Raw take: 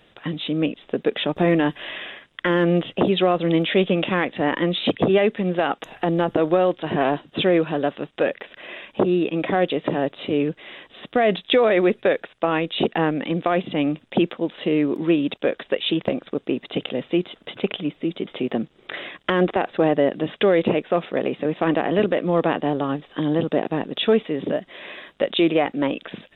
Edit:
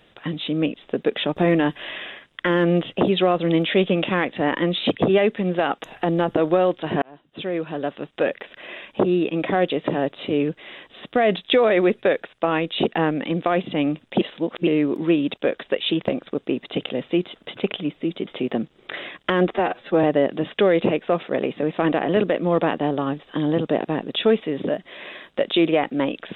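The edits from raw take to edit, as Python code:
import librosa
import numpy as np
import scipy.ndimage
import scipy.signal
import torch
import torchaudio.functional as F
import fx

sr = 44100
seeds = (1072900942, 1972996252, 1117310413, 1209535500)

y = fx.edit(x, sr, fx.fade_in_span(start_s=7.02, length_s=1.27),
    fx.reverse_span(start_s=14.21, length_s=0.46),
    fx.stretch_span(start_s=19.51, length_s=0.35, factor=1.5), tone=tone)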